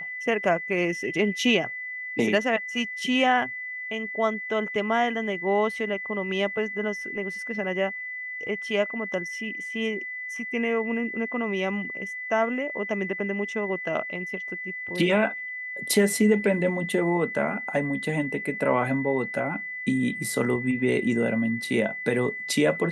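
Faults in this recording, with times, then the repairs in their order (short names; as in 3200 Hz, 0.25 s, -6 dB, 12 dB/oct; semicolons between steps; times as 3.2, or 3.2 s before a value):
tone 2000 Hz -32 dBFS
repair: notch 2000 Hz, Q 30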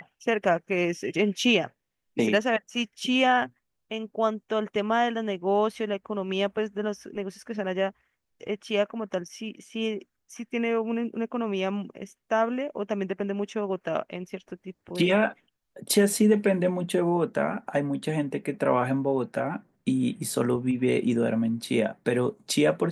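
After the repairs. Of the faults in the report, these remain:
none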